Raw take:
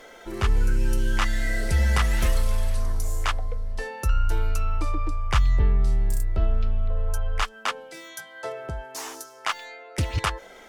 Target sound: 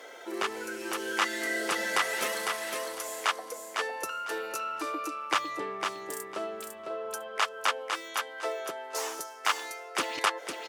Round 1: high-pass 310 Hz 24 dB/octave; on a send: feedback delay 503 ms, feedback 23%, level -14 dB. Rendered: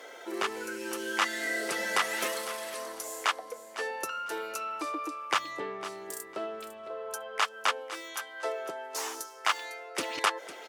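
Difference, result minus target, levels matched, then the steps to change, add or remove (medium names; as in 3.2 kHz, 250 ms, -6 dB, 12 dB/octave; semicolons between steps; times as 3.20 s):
echo-to-direct -9 dB
change: feedback delay 503 ms, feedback 23%, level -5 dB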